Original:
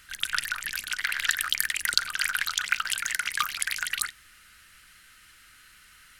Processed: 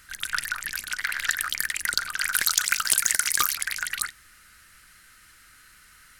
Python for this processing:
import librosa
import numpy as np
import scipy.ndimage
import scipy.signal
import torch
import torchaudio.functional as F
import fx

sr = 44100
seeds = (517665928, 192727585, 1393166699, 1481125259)

y = fx.bass_treble(x, sr, bass_db=-1, treble_db=14, at=(2.32, 3.55))
y = 10.0 ** (-8.5 / 20.0) * np.tanh(y / 10.0 ** (-8.5 / 20.0))
y = fx.peak_eq(y, sr, hz=3000.0, db=-6.5, octaves=0.83)
y = y * 10.0 ** (2.5 / 20.0)